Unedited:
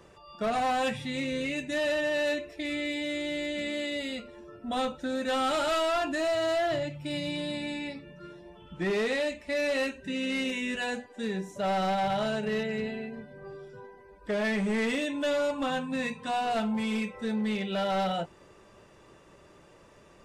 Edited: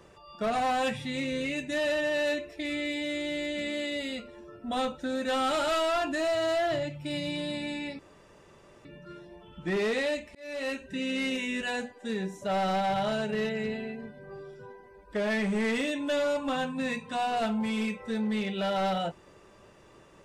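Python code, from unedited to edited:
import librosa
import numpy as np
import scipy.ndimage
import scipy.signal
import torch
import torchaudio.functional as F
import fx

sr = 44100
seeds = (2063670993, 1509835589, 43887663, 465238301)

y = fx.edit(x, sr, fx.insert_room_tone(at_s=7.99, length_s=0.86),
    fx.fade_in_span(start_s=9.49, length_s=0.49), tone=tone)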